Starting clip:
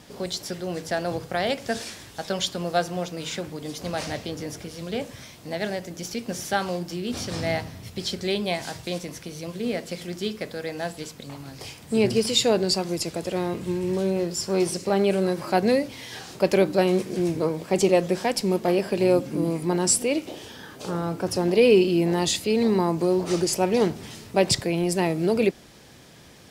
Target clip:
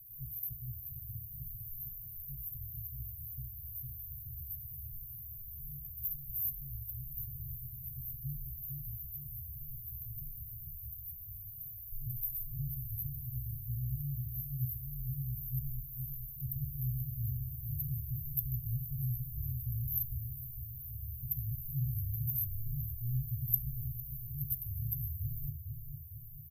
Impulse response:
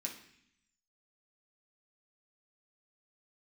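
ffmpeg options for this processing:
-filter_complex "[0:a]aemphasis=mode=production:type=cd,afreqshift=-240,lowshelf=f=170:g=-10,acrossover=split=230|960[a][b][c];[a]volume=28dB,asoftclip=hard,volume=-28dB[d];[d][b][c]amix=inputs=3:normalize=0,asplit=2[e][f];[f]adelay=454,lowpass=f=2k:p=1,volume=-5dB,asplit=2[g][h];[h]adelay=454,lowpass=f=2k:p=1,volume=0.51,asplit=2[i][j];[j]adelay=454,lowpass=f=2k:p=1,volume=0.51,asplit=2[k][l];[l]adelay=454,lowpass=f=2k:p=1,volume=0.51,asplit=2[m][n];[n]adelay=454,lowpass=f=2k:p=1,volume=0.51,asplit=2[o][p];[p]adelay=454,lowpass=f=2k:p=1,volume=0.51[q];[e][g][i][k][m][o][q]amix=inputs=7:normalize=0,asplit=2[r][s];[1:a]atrim=start_sample=2205,atrim=end_sample=3528[t];[s][t]afir=irnorm=-1:irlink=0,volume=-2.5dB[u];[r][u]amix=inputs=2:normalize=0,afftfilt=real='re*(1-between(b*sr/4096,150,12000))':imag='im*(1-between(b*sr/4096,150,12000))':win_size=4096:overlap=0.75,volume=2.5dB"

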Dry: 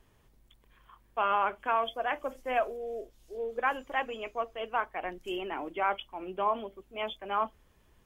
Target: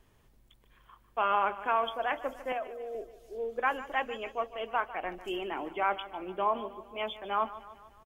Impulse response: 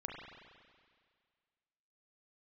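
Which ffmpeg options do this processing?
-filter_complex "[0:a]asettb=1/sr,asplit=3[a][b][c];[a]atrim=end=2.524[d];[b]atrim=start=2.52:end=2.95,asetpts=PTS-STARTPTS,afade=t=in:d=0.004:c=qsin,afade=t=out:st=0.426:d=0.004:c=qsin,acrossover=split=350|770[e][f][g];[e]acompressor=threshold=-57dB:ratio=4[h];[f]acompressor=threshold=-37dB:ratio=4[i];[g]acompressor=threshold=-42dB:ratio=4[j];[h][i][j]amix=inputs=3:normalize=0[k];[c]atrim=start=2.946[l];[d][k]acrossfade=d=0.004:c1=hsin:c2=qsin[m];[m][l]acrossfade=d=0.004:c1=qsin:c2=hsin,aecho=1:1:149|298|447|596|745:0.168|0.0907|0.049|0.0264|0.0143"

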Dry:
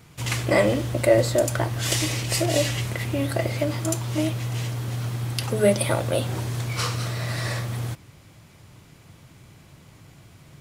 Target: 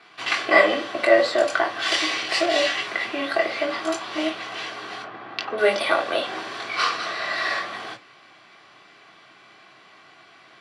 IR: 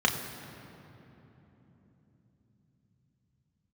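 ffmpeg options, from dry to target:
-filter_complex "[0:a]asettb=1/sr,asplit=3[a][b][c];[a]atrim=end=5.024[d];[b]atrim=start=5.02:end=5.58,asetpts=PTS-STARTPTS,afade=t=in:d=0.004:c=qsin,afade=t=out:st=0.556:d=0.004:c=qsin,adynamicsmooth=sensitivity=1:basefreq=1.7k[e];[c]atrim=start=5.576[f];[d][e]acrossfade=d=0.004:c1=hsin:c2=qsin[g];[g][f]acrossfade=d=0.004:c1=qsin:c2=hsin,highpass=770,lowpass=5k,highshelf=f=2.8k:g=-9[h];[1:a]atrim=start_sample=2205,atrim=end_sample=3969,asetrate=66150,aresample=44100[i];[h][i]afir=irnorm=-1:irlink=0,volume=2.5dB"

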